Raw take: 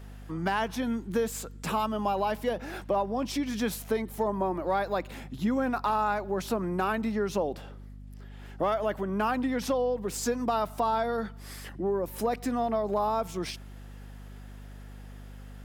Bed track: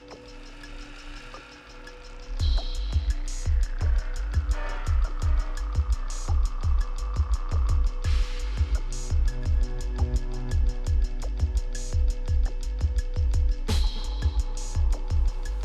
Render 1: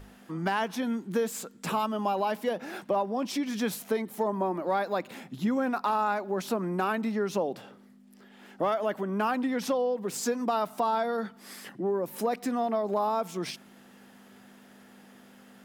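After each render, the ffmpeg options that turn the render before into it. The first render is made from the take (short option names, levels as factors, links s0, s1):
-af "bandreject=f=50:t=h:w=6,bandreject=f=100:t=h:w=6,bandreject=f=150:t=h:w=6"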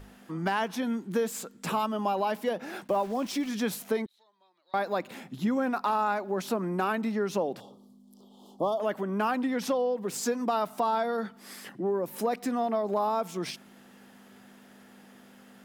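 -filter_complex "[0:a]asplit=3[s0][s1][s2];[s0]afade=t=out:st=2.87:d=0.02[s3];[s1]aeval=exprs='val(0)*gte(abs(val(0)),0.0075)':c=same,afade=t=in:st=2.87:d=0.02,afade=t=out:st=3.48:d=0.02[s4];[s2]afade=t=in:st=3.48:d=0.02[s5];[s3][s4][s5]amix=inputs=3:normalize=0,asettb=1/sr,asplit=3[s6][s7][s8];[s6]atrim=end=4.064[s9];[s7]atrim=start=4.06:end=4.74,asetpts=PTS-STARTPTS,afade=t=in:d=0.004:c=qsin,afade=t=out:st=0.676:d=0.004:c=qsin,bandpass=f=3900:t=q:w=13[s10];[s8]atrim=start=4.736[s11];[s9][s10]acrossfade=d=0.004:c1=hsin:c2=qsin[s12];[s12][s11]acrossfade=d=0.004:c1=qsin:c2=hsin,asettb=1/sr,asplit=3[s13][s14][s15];[s13]atrim=end=7.604[s16];[s14]atrim=start=7.6:end=8.8,asetpts=PTS-STARTPTS,afade=t=in:d=0.004:c=qsin,afade=t=out:st=1.196:d=0.004:c=qsin,asuperstop=centerf=1900:order=12:qfactor=0.95[s17];[s15]atrim=start=8.796[s18];[s16][s17]acrossfade=d=0.004:c1=hsin:c2=qsin[s19];[s19][s18]acrossfade=d=0.004:c1=qsin:c2=hsin"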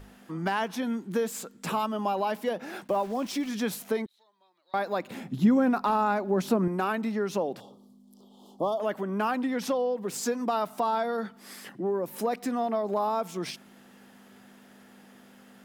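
-filter_complex "[0:a]asettb=1/sr,asplit=3[s0][s1][s2];[s0]atrim=end=5.104[s3];[s1]atrim=start=5.1:end=6.68,asetpts=PTS-STARTPTS,afade=t=in:d=0.004:c=qsin,afade=t=out:st=1.576:d=0.004:c=qsin,lowshelf=f=380:g=9.5[s4];[s2]atrim=start=6.676[s5];[s3][s4]acrossfade=d=0.004:c1=hsin:c2=qsin[s6];[s6][s5]acrossfade=d=0.004:c1=qsin:c2=hsin"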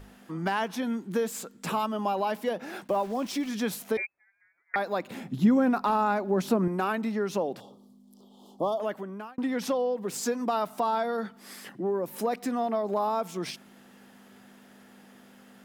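-filter_complex "[0:a]asettb=1/sr,asplit=3[s0][s1][s2];[s0]atrim=end=3.974[s3];[s1]atrim=start=3.97:end=4.76,asetpts=PTS-STARTPTS,afade=t=in:d=0.004:c=qsin,afade=t=out:st=0.786:d=0.004:c=qsin,lowpass=f=2200:t=q:w=0.5098,lowpass=f=2200:t=q:w=0.6013,lowpass=f=2200:t=q:w=0.9,lowpass=f=2200:t=q:w=2.563,afreqshift=-2600[s4];[s2]atrim=start=4.756[s5];[s3][s4]acrossfade=d=0.004:c1=hsin:c2=qsin[s6];[s6][s5]acrossfade=d=0.004:c1=qsin:c2=hsin,asplit=2[s7][s8];[s7]atrim=end=9.38,asetpts=PTS-STARTPTS,afade=t=out:st=8.75:d=0.63[s9];[s8]atrim=start=9.38,asetpts=PTS-STARTPTS,afade=t=in:d=0.004:c=hsin[s10];[s9][s10]concat=n=2:v=0:a=1"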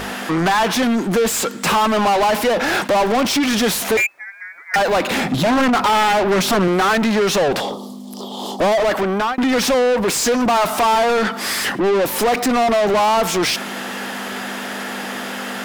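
-filter_complex "[0:a]aeval=exprs='0.266*sin(PI/2*2.82*val(0)/0.266)':c=same,asplit=2[s0][s1];[s1]highpass=f=720:p=1,volume=20,asoftclip=type=tanh:threshold=0.266[s2];[s0][s2]amix=inputs=2:normalize=0,lowpass=f=5700:p=1,volume=0.501"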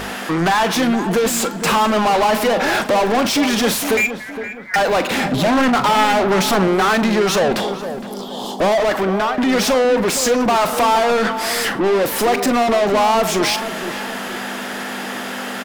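-filter_complex "[0:a]asplit=2[s0][s1];[s1]adelay=42,volume=0.211[s2];[s0][s2]amix=inputs=2:normalize=0,asplit=2[s3][s4];[s4]adelay=464,lowpass=f=1700:p=1,volume=0.316,asplit=2[s5][s6];[s6]adelay=464,lowpass=f=1700:p=1,volume=0.41,asplit=2[s7][s8];[s8]adelay=464,lowpass=f=1700:p=1,volume=0.41,asplit=2[s9][s10];[s10]adelay=464,lowpass=f=1700:p=1,volume=0.41[s11];[s3][s5][s7][s9][s11]amix=inputs=5:normalize=0"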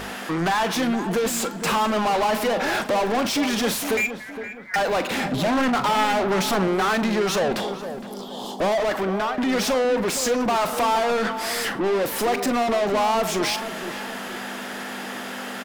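-af "volume=0.501"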